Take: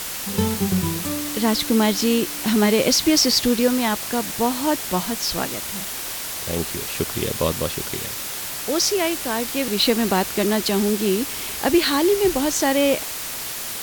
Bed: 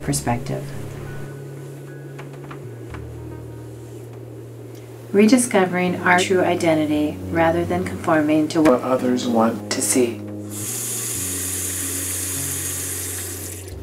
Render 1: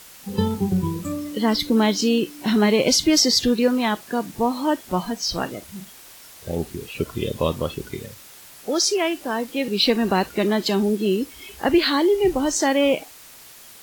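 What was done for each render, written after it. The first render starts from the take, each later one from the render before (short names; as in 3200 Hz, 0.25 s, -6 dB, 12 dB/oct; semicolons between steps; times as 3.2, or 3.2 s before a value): noise print and reduce 15 dB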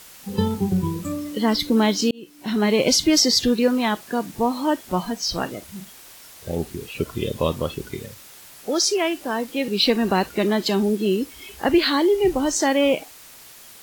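2.11–2.8 fade in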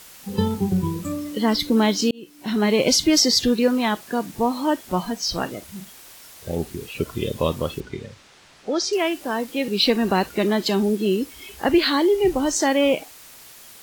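7.8–8.93 air absorption 110 m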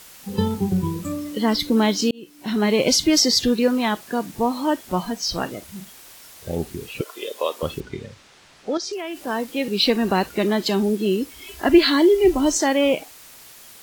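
7.01–7.63 HPF 440 Hz 24 dB/oct; 8.77–9.27 compressor, threshold -26 dBFS; 11.46–12.58 comb 3 ms, depth 67%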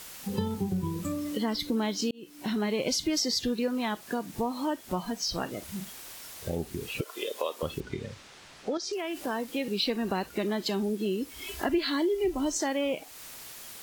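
compressor 2.5:1, threshold -31 dBFS, peak gain reduction 15 dB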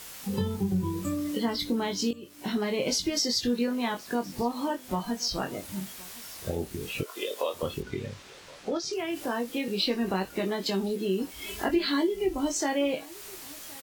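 doubler 21 ms -5 dB; echo 1.07 s -22.5 dB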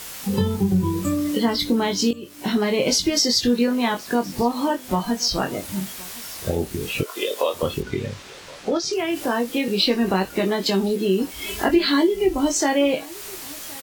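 gain +8 dB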